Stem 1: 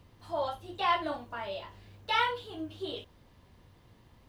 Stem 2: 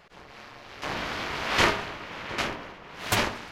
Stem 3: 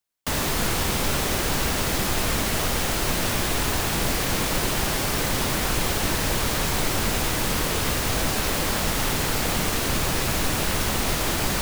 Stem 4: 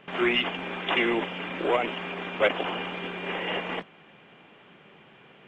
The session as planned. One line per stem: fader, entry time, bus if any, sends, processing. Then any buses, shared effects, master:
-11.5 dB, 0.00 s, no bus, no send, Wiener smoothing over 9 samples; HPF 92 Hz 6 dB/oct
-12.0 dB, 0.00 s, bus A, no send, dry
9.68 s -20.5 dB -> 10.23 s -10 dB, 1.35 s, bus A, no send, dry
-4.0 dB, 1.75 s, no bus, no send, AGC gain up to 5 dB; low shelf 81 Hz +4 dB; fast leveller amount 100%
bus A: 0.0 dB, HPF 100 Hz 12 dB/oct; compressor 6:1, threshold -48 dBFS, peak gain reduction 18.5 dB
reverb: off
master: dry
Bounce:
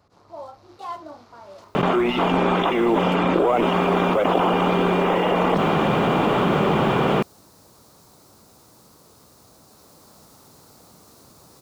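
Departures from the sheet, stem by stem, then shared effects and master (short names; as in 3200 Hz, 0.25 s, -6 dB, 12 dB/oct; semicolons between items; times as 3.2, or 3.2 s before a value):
stem 1 -11.5 dB -> -4.5 dB; stem 2 -12.0 dB -> -6.0 dB; master: extra band shelf 2300 Hz -11.5 dB 1.3 oct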